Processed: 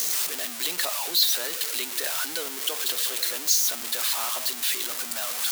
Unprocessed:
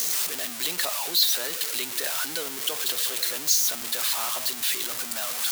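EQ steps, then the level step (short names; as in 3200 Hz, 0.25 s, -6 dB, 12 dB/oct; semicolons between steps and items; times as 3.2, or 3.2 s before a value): low shelf 67 Hz -9.5 dB; bell 130 Hz -14.5 dB 0.45 oct; 0.0 dB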